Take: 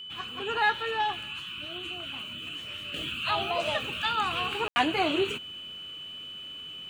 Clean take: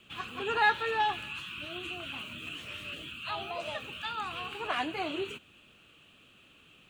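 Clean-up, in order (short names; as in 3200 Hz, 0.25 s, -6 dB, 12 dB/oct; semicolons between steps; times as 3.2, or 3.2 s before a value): notch 3000 Hz, Q 30; room tone fill 4.68–4.76; gain 0 dB, from 2.94 s -8 dB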